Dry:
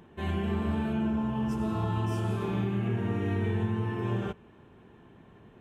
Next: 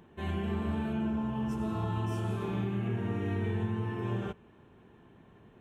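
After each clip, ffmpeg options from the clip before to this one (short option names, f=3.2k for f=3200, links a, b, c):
-af "bandreject=f=4.9k:w=13,volume=-3dB"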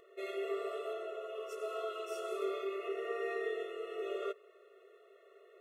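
-af "afftfilt=real='re*eq(mod(floor(b*sr/1024/360),2),1)':imag='im*eq(mod(floor(b*sr/1024/360),2),1)':win_size=1024:overlap=0.75,volume=4dB"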